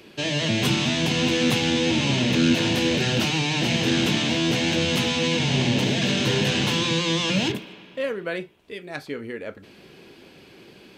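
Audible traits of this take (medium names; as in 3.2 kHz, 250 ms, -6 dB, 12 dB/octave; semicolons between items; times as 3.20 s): noise floor -49 dBFS; spectral tilt -4.5 dB/octave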